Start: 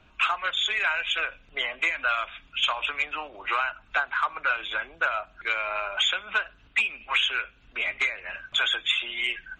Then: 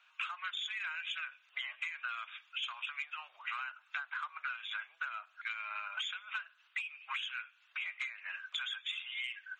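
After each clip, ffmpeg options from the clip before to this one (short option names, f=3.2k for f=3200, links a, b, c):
-af "highpass=f=1.1k:w=0.5412,highpass=f=1.1k:w=1.3066,acompressor=threshold=-33dB:ratio=6,volume=-4dB"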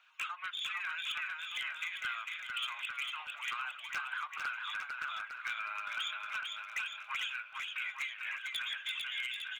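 -filter_complex "[0:a]aphaser=in_gain=1:out_gain=1:delay=2.6:decay=0.25:speed=1.7:type=triangular,aeval=exprs='0.0316*(abs(mod(val(0)/0.0316+3,4)-2)-1)':c=same,asplit=2[a][b];[b]aecho=0:1:450|855|1220|1548|1843:0.631|0.398|0.251|0.158|0.1[c];[a][c]amix=inputs=2:normalize=0"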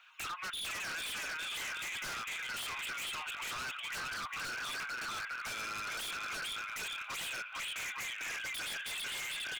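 -af "aeval=exprs='0.0562*(cos(1*acos(clip(val(0)/0.0562,-1,1)))-cos(1*PI/2))+0.0141*(cos(2*acos(clip(val(0)/0.0562,-1,1)))-cos(2*PI/2))+0.0112*(cos(5*acos(clip(val(0)/0.0562,-1,1)))-cos(5*PI/2))+0.00251*(cos(8*acos(clip(val(0)/0.0562,-1,1)))-cos(8*PI/2))':c=same,lowshelf=f=480:g=-6.5,aeval=exprs='0.0178*(abs(mod(val(0)/0.0178+3,4)-2)-1)':c=same"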